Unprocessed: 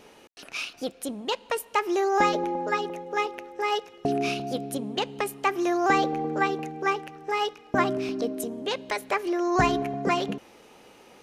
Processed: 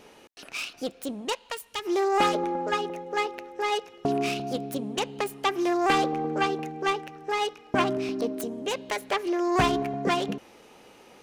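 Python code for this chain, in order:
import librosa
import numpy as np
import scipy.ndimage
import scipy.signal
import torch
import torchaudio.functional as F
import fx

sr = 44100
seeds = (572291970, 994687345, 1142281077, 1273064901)

y = fx.self_delay(x, sr, depth_ms=0.15)
y = fx.peak_eq(y, sr, hz=fx.line((1.32, 140.0), (1.84, 870.0)), db=-12.5, octaves=2.8, at=(1.32, 1.84), fade=0.02)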